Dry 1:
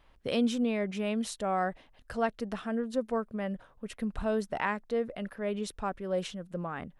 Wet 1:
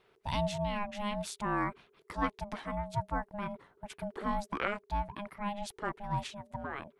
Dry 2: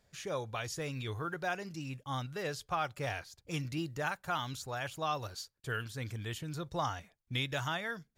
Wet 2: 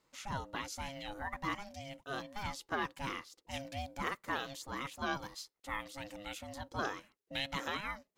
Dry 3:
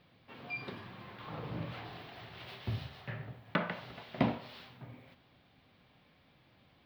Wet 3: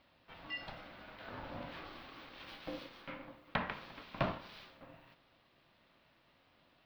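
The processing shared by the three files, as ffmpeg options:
ffmpeg -i in.wav -af "bass=frequency=250:gain=-7,treble=frequency=4000:gain=-1,aeval=exprs='val(0)*sin(2*PI*410*n/s)':channel_layout=same,volume=1dB" out.wav

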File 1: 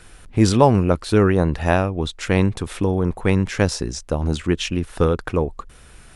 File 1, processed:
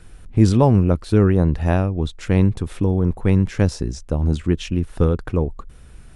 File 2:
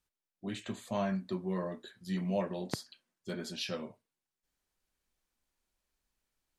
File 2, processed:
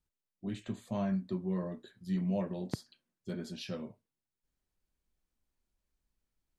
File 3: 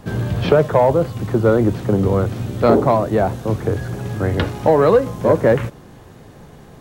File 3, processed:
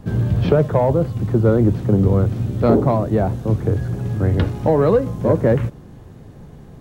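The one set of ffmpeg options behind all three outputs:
ffmpeg -i in.wav -af "lowshelf=frequency=370:gain=11.5,volume=-7dB" out.wav

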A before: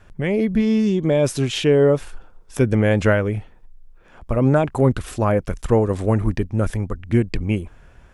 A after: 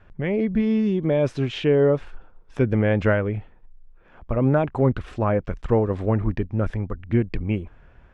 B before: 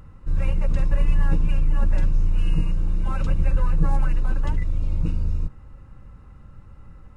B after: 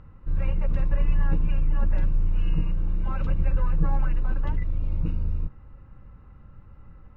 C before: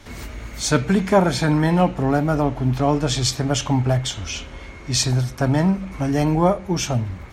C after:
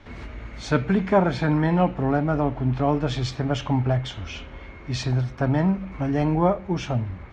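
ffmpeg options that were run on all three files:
ffmpeg -i in.wav -af "lowpass=2900,volume=-3dB" out.wav

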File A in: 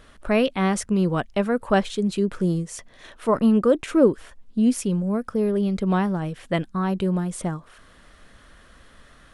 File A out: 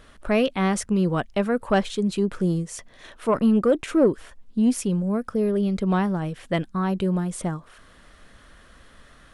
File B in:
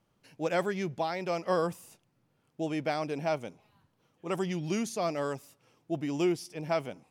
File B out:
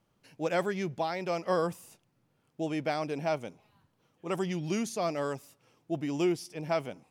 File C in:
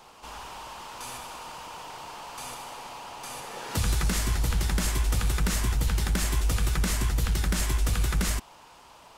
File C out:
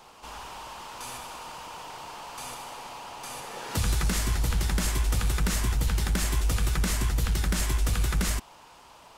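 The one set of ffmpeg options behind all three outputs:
ffmpeg -i in.wav -af "asoftclip=type=tanh:threshold=-9dB" out.wav

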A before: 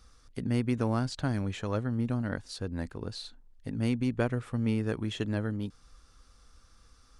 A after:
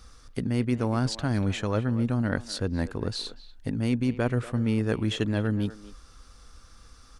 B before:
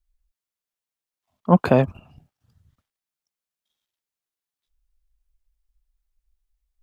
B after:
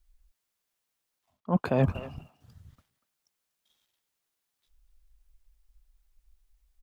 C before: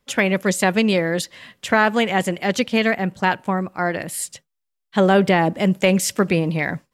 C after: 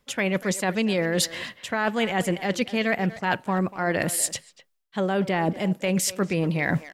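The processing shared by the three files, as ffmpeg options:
ffmpeg -i in.wav -filter_complex "[0:a]areverse,acompressor=threshold=-28dB:ratio=20,areverse,asplit=2[link_01][link_02];[link_02]adelay=240,highpass=300,lowpass=3400,asoftclip=type=hard:threshold=-28dB,volume=-14dB[link_03];[link_01][link_03]amix=inputs=2:normalize=0,volume=7.5dB" out.wav

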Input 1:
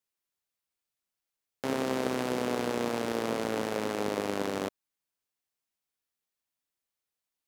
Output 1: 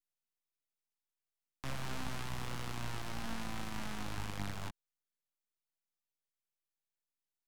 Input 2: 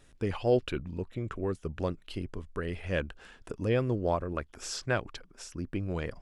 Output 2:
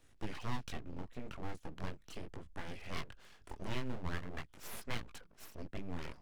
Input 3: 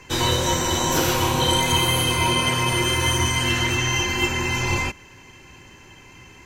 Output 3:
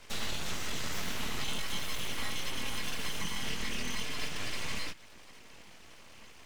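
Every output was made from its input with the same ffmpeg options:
ffmpeg -i in.wav -filter_complex "[0:a]flanger=delay=17.5:depth=6.2:speed=0.4,aeval=exprs='abs(val(0))':channel_layout=same,acrossover=split=280|1500|4400[link_01][link_02][link_03][link_04];[link_01]acompressor=threshold=-28dB:ratio=4[link_05];[link_02]acompressor=threshold=-46dB:ratio=4[link_06];[link_03]acompressor=threshold=-37dB:ratio=4[link_07];[link_04]acompressor=threshold=-44dB:ratio=4[link_08];[link_05][link_06][link_07][link_08]amix=inputs=4:normalize=0,volume=-2.5dB" out.wav

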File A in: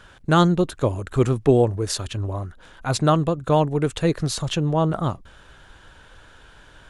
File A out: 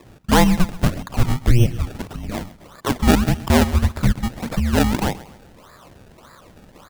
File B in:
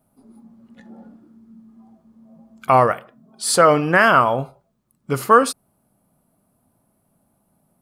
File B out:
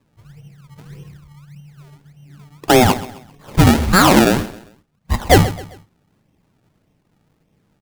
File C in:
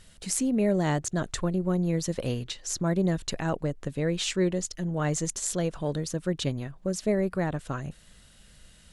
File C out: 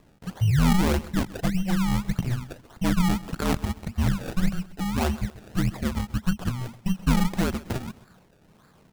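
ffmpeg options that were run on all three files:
ffmpeg -i in.wav -filter_complex "[0:a]highpass=frequency=180:width_type=q:width=0.5412,highpass=frequency=180:width_type=q:width=1.307,lowpass=frequency=2700:width_type=q:width=0.5176,lowpass=frequency=2700:width_type=q:width=0.7071,lowpass=frequency=2700:width_type=q:width=1.932,afreqshift=-370,acrusher=samples=29:mix=1:aa=0.000001:lfo=1:lforange=29:lforate=1.7,asplit=2[link_01][link_02];[link_02]aecho=0:1:132|264|396:0.119|0.0452|0.0172[link_03];[link_01][link_03]amix=inputs=2:normalize=0,acontrast=74,volume=-1dB" out.wav

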